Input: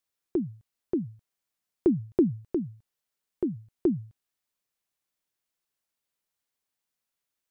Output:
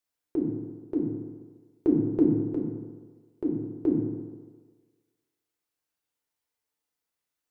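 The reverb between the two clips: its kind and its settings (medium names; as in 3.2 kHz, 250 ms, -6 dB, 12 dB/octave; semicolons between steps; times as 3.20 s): FDN reverb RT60 1.5 s, low-frequency decay 0.8×, high-frequency decay 0.4×, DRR -2 dB; trim -4 dB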